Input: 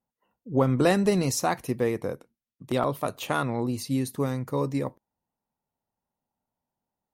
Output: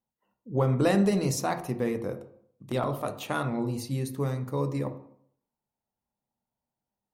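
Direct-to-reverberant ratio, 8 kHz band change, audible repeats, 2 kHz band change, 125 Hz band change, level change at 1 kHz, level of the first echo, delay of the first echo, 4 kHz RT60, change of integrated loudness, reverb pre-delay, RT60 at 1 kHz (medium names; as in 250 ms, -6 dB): 7.5 dB, -4.0 dB, no echo, -3.5 dB, 0.0 dB, -3.5 dB, no echo, no echo, 0.45 s, -2.0 dB, 9 ms, 0.60 s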